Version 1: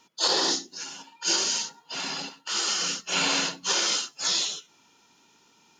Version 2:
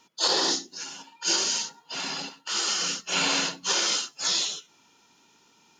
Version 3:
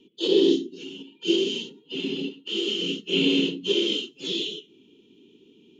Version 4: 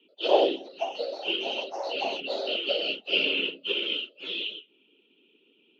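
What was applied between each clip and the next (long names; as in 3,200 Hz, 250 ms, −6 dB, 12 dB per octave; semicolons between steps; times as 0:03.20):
no processing that can be heard
drawn EQ curve 150 Hz 0 dB, 230 Hz +7 dB, 410 Hz +11 dB, 670 Hz −23 dB, 1,600 Hz −29 dB, 3,100 Hz +2 dB, 4,900 Hz −25 dB, 10,000 Hz −21 dB; level +5.5 dB
delay with pitch and tempo change per echo 86 ms, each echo +6 semitones, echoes 2; loudspeaker in its box 430–3,400 Hz, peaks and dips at 600 Hz +8 dB, 1,400 Hz +10 dB, 2,600 Hz +9 dB; harmonic and percussive parts rebalanced harmonic −12 dB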